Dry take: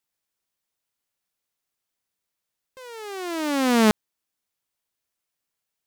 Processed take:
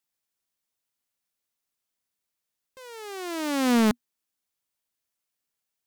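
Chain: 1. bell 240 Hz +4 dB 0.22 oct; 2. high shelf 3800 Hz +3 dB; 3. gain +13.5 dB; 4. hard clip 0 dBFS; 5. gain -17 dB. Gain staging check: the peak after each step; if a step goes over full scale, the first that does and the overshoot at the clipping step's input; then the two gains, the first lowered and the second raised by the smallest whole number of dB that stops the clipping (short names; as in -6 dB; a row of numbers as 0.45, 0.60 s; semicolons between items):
-9.0, -6.0, +7.5, 0.0, -17.0 dBFS; step 3, 7.5 dB; step 3 +5.5 dB, step 5 -9 dB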